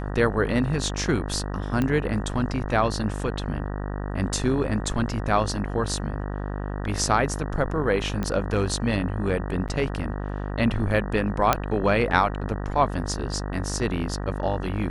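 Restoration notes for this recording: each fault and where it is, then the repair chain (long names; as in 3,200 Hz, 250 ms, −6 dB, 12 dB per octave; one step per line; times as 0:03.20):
mains buzz 50 Hz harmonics 38 −30 dBFS
0:01.82: click −13 dBFS
0:08.23: click −15 dBFS
0:09.68–0:09.69: drop-out 7.5 ms
0:11.53: click −4 dBFS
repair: click removal
hum removal 50 Hz, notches 38
repair the gap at 0:09.68, 7.5 ms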